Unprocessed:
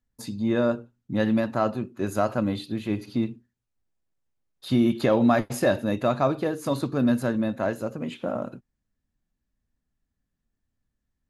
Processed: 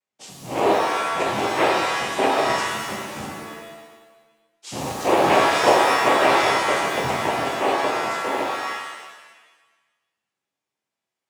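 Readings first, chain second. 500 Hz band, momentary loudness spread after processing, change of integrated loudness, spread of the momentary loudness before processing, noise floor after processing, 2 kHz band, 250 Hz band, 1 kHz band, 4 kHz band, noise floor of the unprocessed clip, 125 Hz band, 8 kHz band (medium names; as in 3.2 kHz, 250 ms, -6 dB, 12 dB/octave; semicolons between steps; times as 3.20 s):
+4.5 dB, 16 LU, +5.0 dB, 10 LU, under -85 dBFS, +12.5 dB, -5.0 dB, +12.5 dB, +13.5 dB, -82 dBFS, -6.5 dB, +12.0 dB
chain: resonant low shelf 350 Hz -13.5 dB, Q 1.5; noise-vocoded speech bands 4; pitch-shifted reverb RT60 1.2 s, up +7 st, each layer -2 dB, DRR -1 dB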